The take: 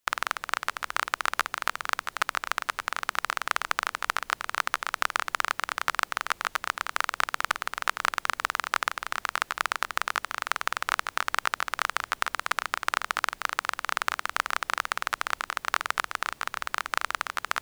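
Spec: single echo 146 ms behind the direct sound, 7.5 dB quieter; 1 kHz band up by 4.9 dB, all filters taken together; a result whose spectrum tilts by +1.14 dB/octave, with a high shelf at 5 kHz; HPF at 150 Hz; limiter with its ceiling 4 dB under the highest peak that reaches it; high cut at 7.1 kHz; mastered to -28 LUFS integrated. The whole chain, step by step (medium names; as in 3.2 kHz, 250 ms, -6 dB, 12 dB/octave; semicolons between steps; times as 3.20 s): high-pass 150 Hz; low-pass 7.1 kHz; peaking EQ 1 kHz +6 dB; treble shelf 5 kHz +6.5 dB; peak limiter -5.5 dBFS; delay 146 ms -7.5 dB; trim -1.5 dB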